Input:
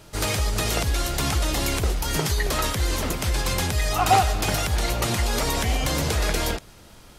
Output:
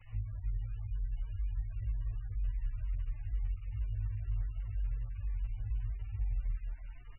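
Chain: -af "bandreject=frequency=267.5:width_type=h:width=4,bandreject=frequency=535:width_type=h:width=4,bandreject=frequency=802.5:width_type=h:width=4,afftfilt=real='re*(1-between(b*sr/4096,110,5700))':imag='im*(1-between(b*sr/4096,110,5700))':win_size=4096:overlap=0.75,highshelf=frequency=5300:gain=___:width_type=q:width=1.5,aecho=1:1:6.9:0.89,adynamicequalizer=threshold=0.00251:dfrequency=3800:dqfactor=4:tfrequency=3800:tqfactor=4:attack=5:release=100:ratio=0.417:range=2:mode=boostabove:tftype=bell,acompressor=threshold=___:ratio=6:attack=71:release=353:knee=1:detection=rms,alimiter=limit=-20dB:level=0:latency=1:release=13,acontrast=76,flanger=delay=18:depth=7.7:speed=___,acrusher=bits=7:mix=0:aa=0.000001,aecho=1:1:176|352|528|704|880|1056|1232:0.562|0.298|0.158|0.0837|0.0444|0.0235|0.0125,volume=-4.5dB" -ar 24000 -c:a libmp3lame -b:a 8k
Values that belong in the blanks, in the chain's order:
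6.5, -32dB, 0.51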